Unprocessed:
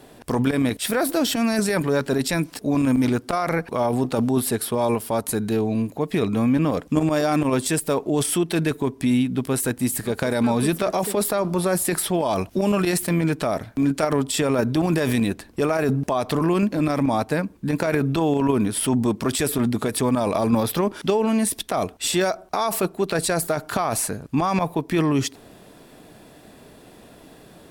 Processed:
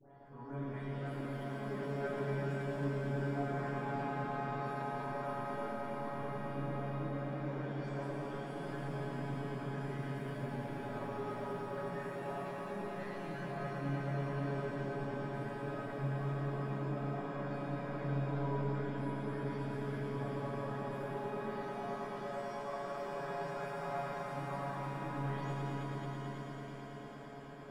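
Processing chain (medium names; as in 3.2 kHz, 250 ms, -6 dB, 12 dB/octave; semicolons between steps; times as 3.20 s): delay that grows with frequency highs late, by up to 246 ms; transient shaper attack -11 dB, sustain +3 dB; reverse; compression, threshold -32 dBFS, peak gain reduction 14 dB; reverse; saturation -32 dBFS, distortion -14 dB; Savitzky-Golay filter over 41 samples; feedback comb 140 Hz, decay 0.22 s, harmonics all, mix 100%; echo with a slow build-up 109 ms, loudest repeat 5, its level -9.5 dB; pitch-shifted reverb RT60 3.7 s, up +7 st, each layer -8 dB, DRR -7 dB; trim -2.5 dB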